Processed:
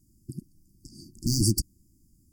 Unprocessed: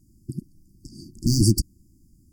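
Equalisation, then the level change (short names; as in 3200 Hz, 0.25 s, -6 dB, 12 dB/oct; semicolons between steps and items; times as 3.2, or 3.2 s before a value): high shelf 4000 Hz +6.5 dB; -6.0 dB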